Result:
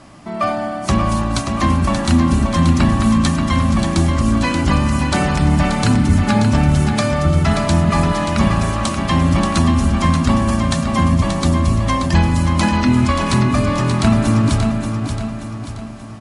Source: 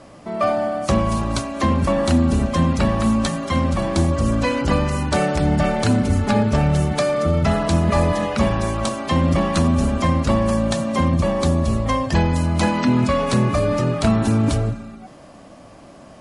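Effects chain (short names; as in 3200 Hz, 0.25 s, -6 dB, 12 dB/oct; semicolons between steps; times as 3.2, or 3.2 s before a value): bell 500 Hz -12.5 dB 0.55 oct; feedback echo 0.581 s, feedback 47%, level -6.5 dB; gain +3.5 dB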